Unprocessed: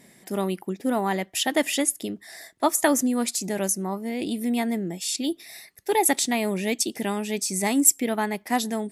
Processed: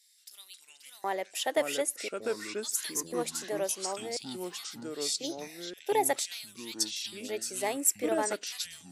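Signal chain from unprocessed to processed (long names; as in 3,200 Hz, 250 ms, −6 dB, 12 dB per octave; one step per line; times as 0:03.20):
auto-filter high-pass square 0.48 Hz 500–4,300 Hz
delay with pitch and tempo change per echo 174 ms, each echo −5 semitones, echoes 3, each echo −6 dB
level −8.5 dB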